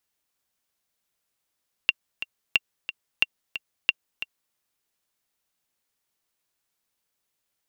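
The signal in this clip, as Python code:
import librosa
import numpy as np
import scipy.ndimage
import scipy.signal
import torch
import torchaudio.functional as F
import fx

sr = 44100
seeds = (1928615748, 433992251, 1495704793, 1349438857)

y = fx.click_track(sr, bpm=180, beats=2, bars=4, hz=2760.0, accent_db=12.0, level_db=-5.0)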